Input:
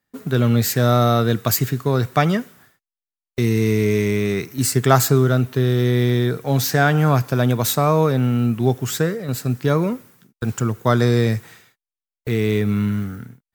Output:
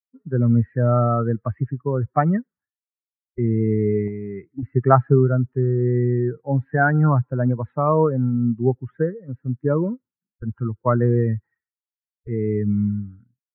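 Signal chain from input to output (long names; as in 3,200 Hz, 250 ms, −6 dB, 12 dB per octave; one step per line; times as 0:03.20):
spectral dynamics exaggerated over time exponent 2
Butterworth low-pass 1,700 Hz 48 dB per octave
0:04.07–0:04.63: downward compressor, threshold −29 dBFS, peak gain reduction 9 dB
level +2.5 dB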